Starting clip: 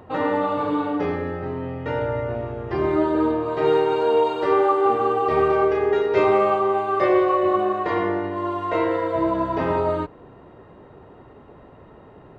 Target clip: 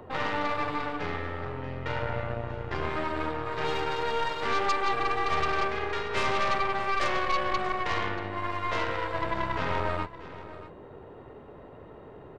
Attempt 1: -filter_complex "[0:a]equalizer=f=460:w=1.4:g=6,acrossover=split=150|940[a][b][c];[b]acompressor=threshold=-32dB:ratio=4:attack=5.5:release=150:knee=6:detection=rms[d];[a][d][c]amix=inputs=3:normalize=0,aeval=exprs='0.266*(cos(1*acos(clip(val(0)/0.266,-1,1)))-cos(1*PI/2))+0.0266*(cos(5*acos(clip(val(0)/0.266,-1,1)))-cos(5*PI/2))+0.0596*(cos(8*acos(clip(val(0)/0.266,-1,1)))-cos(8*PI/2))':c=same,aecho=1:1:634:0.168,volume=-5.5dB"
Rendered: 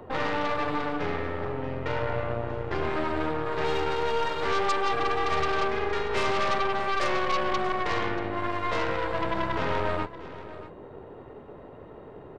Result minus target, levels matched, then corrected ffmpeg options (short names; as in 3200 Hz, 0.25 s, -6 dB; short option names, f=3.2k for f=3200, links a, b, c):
compressor: peak gain reduction -7.5 dB
-filter_complex "[0:a]equalizer=f=460:w=1.4:g=6,acrossover=split=150|940[a][b][c];[b]acompressor=threshold=-42dB:ratio=4:attack=5.5:release=150:knee=6:detection=rms[d];[a][d][c]amix=inputs=3:normalize=0,aeval=exprs='0.266*(cos(1*acos(clip(val(0)/0.266,-1,1)))-cos(1*PI/2))+0.0266*(cos(5*acos(clip(val(0)/0.266,-1,1)))-cos(5*PI/2))+0.0596*(cos(8*acos(clip(val(0)/0.266,-1,1)))-cos(8*PI/2))':c=same,aecho=1:1:634:0.168,volume=-5.5dB"